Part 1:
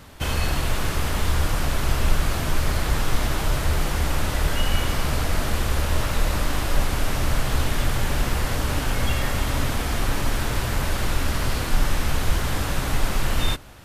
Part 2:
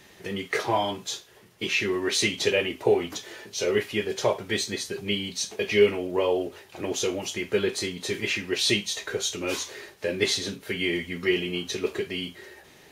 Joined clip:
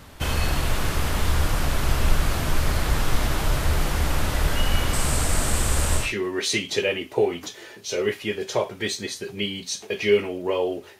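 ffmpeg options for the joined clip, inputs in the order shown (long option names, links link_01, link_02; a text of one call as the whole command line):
ffmpeg -i cue0.wav -i cue1.wav -filter_complex "[0:a]asettb=1/sr,asplit=3[link_01][link_02][link_03];[link_01]atrim=end=4.934[link_04];[link_02]atrim=start=4.93:end=6.14,asetpts=PTS-STARTPTS,afade=type=in:duration=0.004:curve=qsin,afade=type=out:start_time=1.206:duration=0.004:curve=qsin,equalizer=frequency=8200:width_type=o:width=0.55:gain=14.5[link_05];[link_03]atrim=start=6.136[link_06];[link_04][link_05]acrossfade=duration=0.004:curve1=hsin:curve2=qsin[link_07];[link_07][link_06]acrossfade=duration=0.004:curve1=qsin:curve2=hsin,apad=whole_dur=10.99,atrim=end=10.99,atrim=end=6.14,asetpts=PTS-STARTPTS[link_08];[1:a]atrim=start=1.63:end=6.68,asetpts=PTS-STARTPTS[link_09];[link_08][link_09]acrossfade=duration=0.2:curve1=tri:curve2=tri" out.wav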